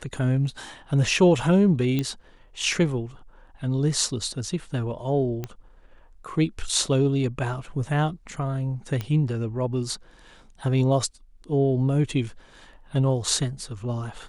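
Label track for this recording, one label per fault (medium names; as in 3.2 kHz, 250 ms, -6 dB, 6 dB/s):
1.990000	1.990000	pop -13 dBFS
5.440000	5.440000	pop -17 dBFS
9.010000	9.010000	pop -16 dBFS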